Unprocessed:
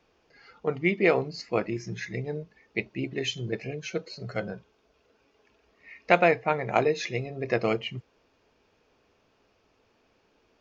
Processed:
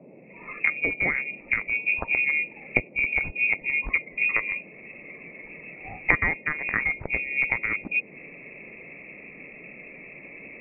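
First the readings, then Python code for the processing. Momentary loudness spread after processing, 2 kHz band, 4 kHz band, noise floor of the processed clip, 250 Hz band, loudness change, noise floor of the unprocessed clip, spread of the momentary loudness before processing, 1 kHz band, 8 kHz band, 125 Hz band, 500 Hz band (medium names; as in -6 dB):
20 LU, +10.0 dB, under -10 dB, -48 dBFS, -7.5 dB, +4.0 dB, -68 dBFS, 13 LU, -7.0 dB, no reading, -6.5 dB, -12.5 dB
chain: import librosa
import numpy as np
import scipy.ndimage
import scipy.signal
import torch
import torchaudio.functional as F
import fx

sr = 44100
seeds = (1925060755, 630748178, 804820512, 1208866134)

y = fx.wiener(x, sr, points=41)
y = fx.recorder_agc(y, sr, target_db=-12.0, rise_db_per_s=60.0, max_gain_db=30)
y = fx.freq_invert(y, sr, carrier_hz=2600)
y = fx.dmg_noise_band(y, sr, seeds[0], low_hz=150.0, high_hz=600.0, level_db=-46.0)
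y = fx.low_shelf(y, sr, hz=77.0, db=10.5)
y = y * librosa.db_to_amplitude(-4.5)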